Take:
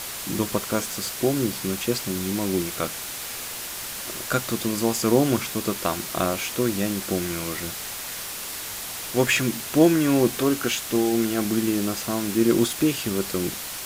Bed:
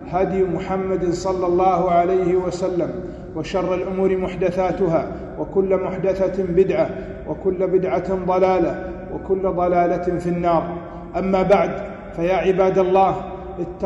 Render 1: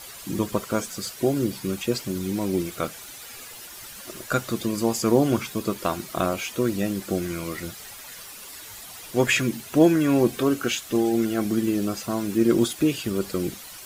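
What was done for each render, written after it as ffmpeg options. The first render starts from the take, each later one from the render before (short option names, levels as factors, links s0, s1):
-af "afftdn=nr=11:nf=-34"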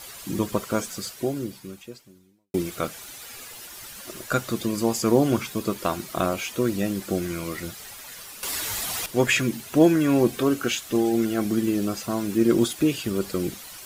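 -filter_complex "[0:a]asplit=4[s0][s1][s2][s3];[s0]atrim=end=2.54,asetpts=PTS-STARTPTS,afade=t=out:st=0.93:d=1.61:c=qua[s4];[s1]atrim=start=2.54:end=8.432,asetpts=PTS-STARTPTS,afade=t=in:d=0.004:c=hsin[s5];[s2]atrim=start=8.428:end=9.062,asetpts=PTS-STARTPTS,volume=3.76[s6];[s3]atrim=start=9.058[s7];[s4][s5]concat=n=2:v=0:a=1[s8];[s8][s6]acrossfade=d=0.004:c1=hsin:c2=hsin[s9];[s9][s7]acrossfade=d=0.004:c1=hsin:c2=hsin"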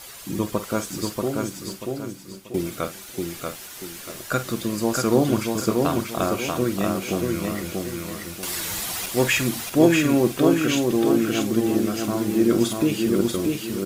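-filter_complex "[0:a]asplit=2[s0][s1];[s1]adelay=47,volume=0.237[s2];[s0][s2]amix=inputs=2:normalize=0,aecho=1:1:636|1272|1908|2544:0.668|0.227|0.0773|0.0263"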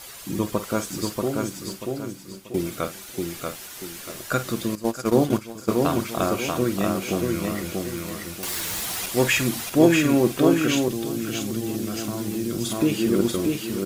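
-filter_complex "[0:a]asettb=1/sr,asplit=3[s0][s1][s2];[s0]atrim=end=4.754[s3];[s1]atrim=start=4.75:end=5.7,asetpts=PTS-STARTPTS,afade=t=in:d=0.004:c=qsin,afade=t=out:st=0.946:d=0.004:c=qsin,agate=range=0.224:threshold=0.0794:ratio=16:release=100:detection=peak[s4];[s2]atrim=start=5.696[s5];[s3][s4]acrossfade=d=0.004:c1=hsin:c2=qsin[s6];[s6][s5]acrossfade=d=0.004:c1=qsin:c2=hsin,asplit=3[s7][s8][s9];[s7]afade=t=out:st=7.95:d=0.02[s10];[s8]aeval=exprs='(mod(10.6*val(0)+1,2)-1)/10.6':c=same,afade=t=in:st=7.95:d=0.02,afade=t=out:st=8.96:d=0.02[s11];[s9]afade=t=in:st=8.96:d=0.02[s12];[s10][s11][s12]amix=inputs=3:normalize=0,asettb=1/sr,asplit=3[s13][s14][s15];[s13]atrim=end=10.884[s16];[s14]atrim=start=10.88:end=12.7,asetpts=PTS-STARTPTS,afade=t=in:d=0.004:c=qsin,afade=t=out:st=1.816:d=0.004:c=qsin,acrossover=split=160|3000[s17][s18][s19];[s18]acompressor=threshold=0.0447:ratio=6:attack=3.2:release=140:knee=2.83:detection=peak[s20];[s17][s20][s19]amix=inputs=3:normalize=0[s21];[s15]atrim=start=12.696[s22];[s16][s21]acrossfade=d=0.004:c1=hsin:c2=qsin[s23];[s23][s22]acrossfade=d=0.004:c1=qsin:c2=hsin"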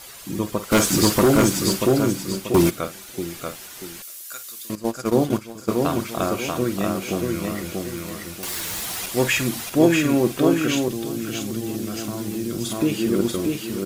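-filter_complex "[0:a]asplit=3[s0][s1][s2];[s0]afade=t=out:st=0.71:d=0.02[s3];[s1]aeval=exprs='0.316*sin(PI/2*2.82*val(0)/0.316)':c=same,afade=t=in:st=0.71:d=0.02,afade=t=out:st=2.69:d=0.02[s4];[s2]afade=t=in:st=2.69:d=0.02[s5];[s3][s4][s5]amix=inputs=3:normalize=0,asettb=1/sr,asplit=3[s6][s7][s8];[s6]atrim=end=4.024[s9];[s7]atrim=start=4.02:end=4.7,asetpts=PTS-STARTPTS,afade=t=in:d=0.004:c=qsin,afade=t=out:st=0.676:d=0.004:c=qsin,aderivative[s10];[s8]atrim=start=4.696[s11];[s9][s10]acrossfade=d=0.004:c1=hsin:c2=qsin[s12];[s12][s11]acrossfade=d=0.004:c1=qsin:c2=hsin"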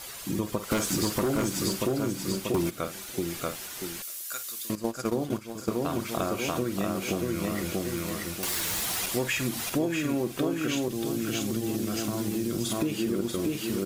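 -af "acompressor=threshold=0.0562:ratio=6"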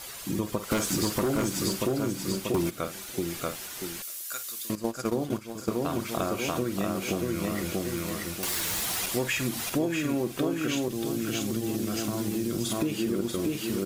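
-filter_complex "[0:a]asettb=1/sr,asplit=3[s0][s1][s2];[s0]atrim=end=10.824[s3];[s1]atrim=start=10.82:end=11.79,asetpts=PTS-STARTPTS,afade=t=in:d=0.004:c=qsin,afade=t=out:st=0.966:d=0.004:c=qsin,aeval=exprs='sgn(val(0))*max(abs(val(0))-0.001,0)':c=same[s4];[s2]atrim=start=11.786[s5];[s3][s4]acrossfade=d=0.004:c1=hsin:c2=qsin[s6];[s6][s5]acrossfade=d=0.004:c1=qsin:c2=hsin"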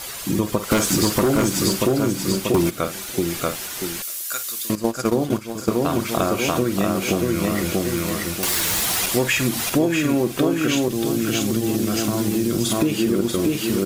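-af "volume=2.66"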